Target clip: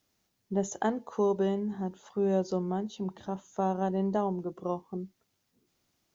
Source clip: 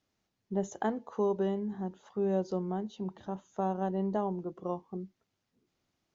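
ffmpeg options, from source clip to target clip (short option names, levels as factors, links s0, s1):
-af "crystalizer=i=1.5:c=0,volume=1.33"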